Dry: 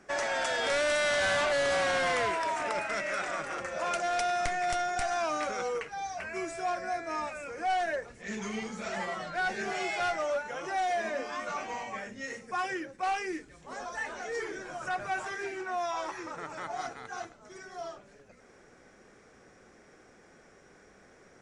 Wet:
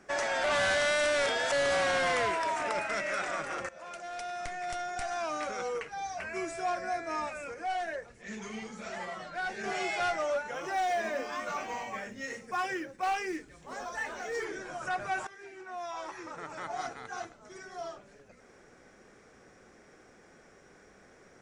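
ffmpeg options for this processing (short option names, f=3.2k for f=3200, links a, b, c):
-filter_complex "[0:a]asettb=1/sr,asplit=3[a][b][c];[a]atrim=end=7.544[d];[b]atrim=start=7.54:end=9.64,asetpts=PTS-STARTPTS,afade=t=in:d=0.004:c=qsin,afade=t=out:st=2.096:d=0.004:c=qsin,flanger=delay=1.1:depth=3:regen=-73:speed=1.9:shape=triangular[e];[c]atrim=start=9.636[f];[d][e]acrossfade=d=0.004:c1=hsin:c2=qsin[g];[g][f]acrossfade=d=0.004:c1=qsin:c2=hsin,asettb=1/sr,asplit=3[h][i][j];[h]atrim=end=10.544[k];[i]atrim=start=10.54:end=14.45,asetpts=PTS-STARTPTS,afade=t=in:d=0.004:c=qsin,afade=t=out:st=3.906:d=0.004:c=qsin,acrusher=bits=9:mode=log:mix=0:aa=0.000001[l];[j]atrim=start=14.446[m];[k][l]acrossfade=d=0.004:c1=hsin:c2=qsin[n];[n][m]acrossfade=d=0.004:c1=qsin:c2=hsin,asplit=5[o][p][q][r][s];[o]atrim=end=0.442[t];[p]atrim=start=0.438:end=1.522,asetpts=PTS-STARTPTS,areverse[u];[q]atrim=start=1.518:end=3.69,asetpts=PTS-STARTPTS,afade=t=out:st=2.168:d=0.004:c=hsin:silence=0.16788[v];[r]atrim=start=3.69:end=15.27,asetpts=PTS-STARTPTS,afade=t=in:d=2.55:silence=0.16788,afade=t=out:st=11.576:d=0.004:c=hsin:silence=0.158489[w];[s]atrim=start=15.27,asetpts=PTS-STARTPTS,afade=t=in:d=1.51:silence=0.158489[x];[t][u]acrossfade=d=0.004:c1=hsin:c2=hsin[y];[v][w][x]concat=n=3:v=0:a=1[z];[y][z]acrossfade=d=0.004:c1=hsin:c2=hsin"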